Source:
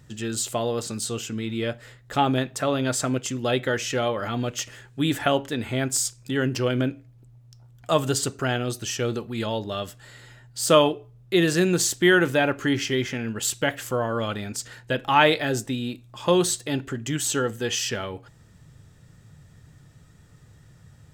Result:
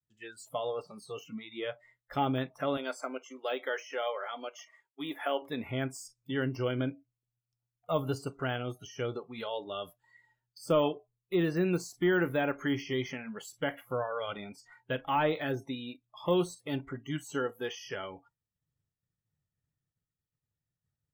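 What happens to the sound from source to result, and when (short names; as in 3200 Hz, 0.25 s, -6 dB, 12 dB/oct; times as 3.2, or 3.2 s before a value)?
2.77–5.42 HPF 410 Hz
whole clip: expander -45 dBFS; de-esser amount 90%; spectral noise reduction 25 dB; gain -7 dB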